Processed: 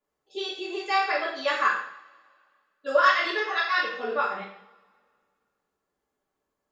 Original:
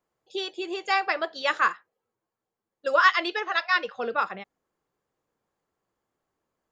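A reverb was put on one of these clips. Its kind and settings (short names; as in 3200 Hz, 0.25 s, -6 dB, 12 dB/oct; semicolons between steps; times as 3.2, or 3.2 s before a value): two-slope reverb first 0.6 s, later 2.1 s, from -24 dB, DRR -7.5 dB; gain -8.5 dB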